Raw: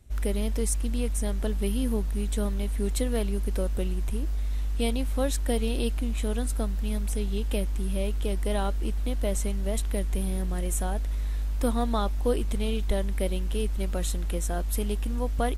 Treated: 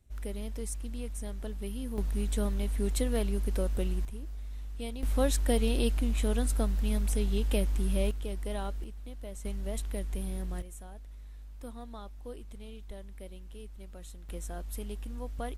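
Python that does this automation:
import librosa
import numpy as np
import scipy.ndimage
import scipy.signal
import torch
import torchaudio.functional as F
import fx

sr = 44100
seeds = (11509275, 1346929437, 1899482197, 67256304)

y = fx.gain(x, sr, db=fx.steps((0.0, -10.0), (1.98, -2.5), (4.05, -11.5), (5.03, -0.5), (8.11, -8.0), (8.84, -15.0), (9.45, -7.0), (10.62, -18.0), (14.29, -10.5)))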